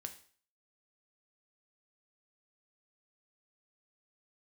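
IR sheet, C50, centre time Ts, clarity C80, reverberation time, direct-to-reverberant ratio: 12.5 dB, 9 ms, 16.5 dB, 0.45 s, 6.0 dB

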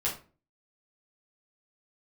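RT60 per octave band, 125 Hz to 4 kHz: 0.50, 0.45, 0.40, 0.35, 0.30, 0.25 seconds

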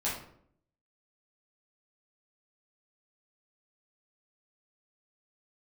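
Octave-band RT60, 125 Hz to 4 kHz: 0.80, 0.80, 0.70, 0.60, 0.50, 0.40 seconds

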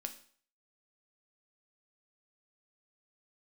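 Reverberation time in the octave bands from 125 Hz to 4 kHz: 0.50, 0.45, 0.50, 0.50, 0.50, 0.50 seconds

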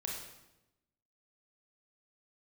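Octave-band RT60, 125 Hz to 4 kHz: 1.2, 1.1, 1.0, 0.90, 0.80, 0.80 seconds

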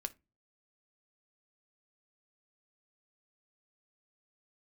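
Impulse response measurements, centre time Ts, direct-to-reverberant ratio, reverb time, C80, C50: 3 ms, 10.0 dB, 0.25 s, 31.0 dB, 21.5 dB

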